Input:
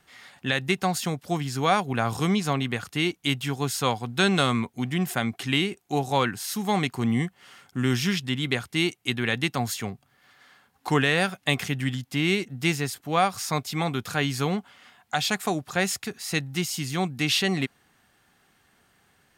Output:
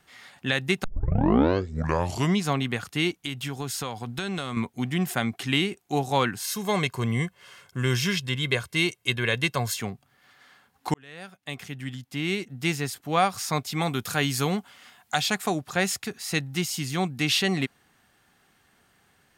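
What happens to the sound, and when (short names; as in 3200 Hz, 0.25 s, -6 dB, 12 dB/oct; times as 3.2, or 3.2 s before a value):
0.84 tape start 1.56 s
3.1–4.57 compressor, threshold -27 dBFS
6.42–9.79 comb 1.9 ms, depth 59%
10.94–13.12 fade in
13.8–15.19 high shelf 7800 Hz -> 4600 Hz +9 dB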